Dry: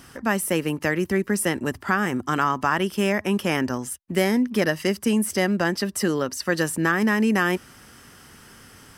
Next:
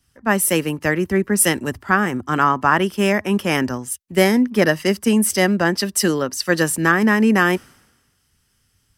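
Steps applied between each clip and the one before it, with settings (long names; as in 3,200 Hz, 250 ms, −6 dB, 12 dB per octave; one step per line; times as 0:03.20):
multiband upward and downward expander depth 100%
level +5 dB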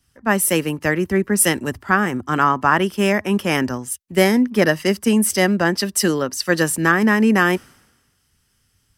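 no processing that can be heard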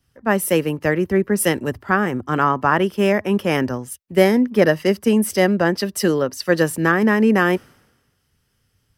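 octave-band graphic EQ 125/500/8,000 Hz +4/+6/−6 dB
level −2.5 dB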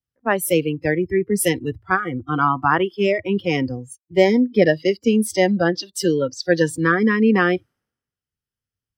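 noise reduction from a noise print of the clip's start 24 dB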